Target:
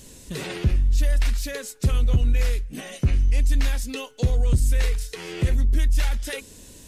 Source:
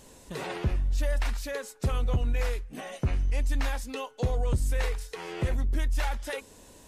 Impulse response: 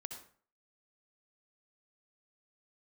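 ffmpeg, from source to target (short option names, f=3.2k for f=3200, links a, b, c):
-filter_complex "[0:a]equalizer=f=860:w=0.72:g=-13,asplit=2[a][b];[b]asoftclip=type=hard:threshold=-34dB,volume=-12dB[c];[a][c]amix=inputs=2:normalize=0,volume=7dB"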